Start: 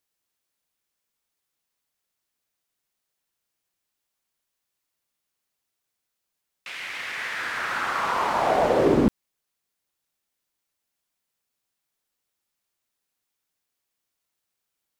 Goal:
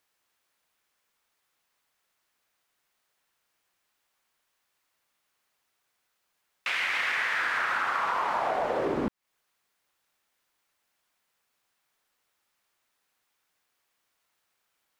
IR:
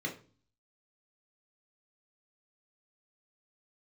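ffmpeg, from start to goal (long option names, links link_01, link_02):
-af "equalizer=frequency=1300:width=0.41:gain=9,acompressor=threshold=-26dB:ratio=20,volume=1.5dB"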